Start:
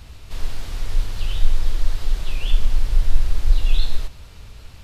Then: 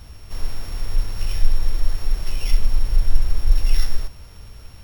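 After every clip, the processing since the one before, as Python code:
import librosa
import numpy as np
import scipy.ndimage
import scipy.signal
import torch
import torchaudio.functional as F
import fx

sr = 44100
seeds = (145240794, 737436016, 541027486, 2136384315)

y = np.r_[np.sort(x[:len(x) // 8 * 8].reshape(-1, 8), axis=1).ravel(), x[len(x) // 8 * 8:]]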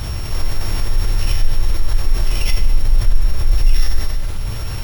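y = fx.rev_fdn(x, sr, rt60_s=1.3, lf_ratio=1.2, hf_ratio=0.95, size_ms=52.0, drr_db=2.5)
y = fx.env_flatten(y, sr, amount_pct=50)
y = y * 10.0 ** (-1.5 / 20.0)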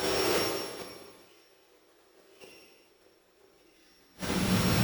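y = fx.gate_flip(x, sr, shuts_db=-8.0, range_db=-35)
y = fx.filter_sweep_highpass(y, sr, from_hz=390.0, to_hz=170.0, start_s=3.34, end_s=4.81, q=2.9)
y = fx.rev_gated(y, sr, seeds[0], gate_ms=480, shape='falling', drr_db=-3.5)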